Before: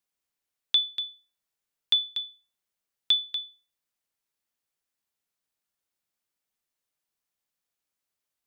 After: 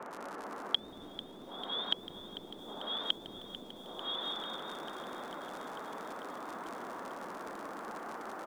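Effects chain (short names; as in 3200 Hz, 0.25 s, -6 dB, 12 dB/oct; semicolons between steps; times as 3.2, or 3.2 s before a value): moving spectral ripple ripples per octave 0.87, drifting -0.88 Hz, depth 11 dB; high shelf 3900 Hz -10 dB; Schroeder reverb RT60 1.8 s, combs from 27 ms, DRR 0.5 dB; reverse; compressor, threshold -31 dBFS, peak gain reduction 13.5 dB; reverse; crackle 37/s -47 dBFS; vibrato 2.5 Hz 95 cents; band noise 200–1400 Hz -58 dBFS; on a send: feedback echo 0.181 s, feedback 34%, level -3 dB; on the sum: treble ducked by the level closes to 380 Hz, closed at -33 dBFS; lo-fi delay 0.445 s, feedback 80%, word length 11-bit, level -14 dB; gain +12.5 dB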